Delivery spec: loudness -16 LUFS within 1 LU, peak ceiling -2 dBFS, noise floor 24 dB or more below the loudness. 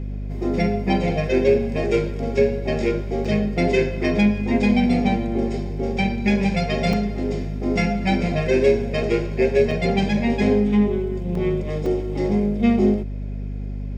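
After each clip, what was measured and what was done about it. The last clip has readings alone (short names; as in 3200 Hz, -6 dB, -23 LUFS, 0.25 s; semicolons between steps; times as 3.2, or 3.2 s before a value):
dropouts 5; longest dropout 3.4 ms; hum 50 Hz; harmonics up to 250 Hz; hum level -26 dBFS; loudness -21.0 LUFS; peak -5.5 dBFS; loudness target -16.0 LUFS
-> interpolate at 3.25/6.93/9.71/11.35/11.86, 3.4 ms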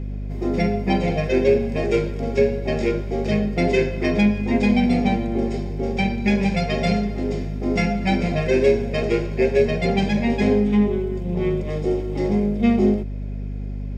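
dropouts 0; hum 50 Hz; harmonics up to 250 Hz; hum level -26 dBFS
-> notches 50/100/150/200/250 Hz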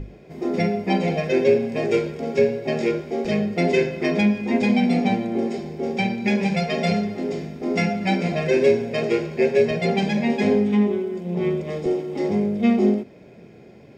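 hum none; loudness -22.0 LUFS; peak -6.5 dBFS; loudness target -16.0 LUFS
-> gain +6 dB; limiter -2 dBFS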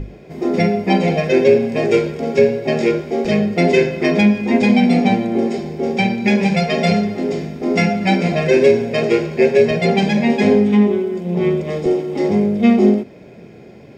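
loudness -16.0 LUFS; peak -2.0 dBFS; noise floor -40 dBFS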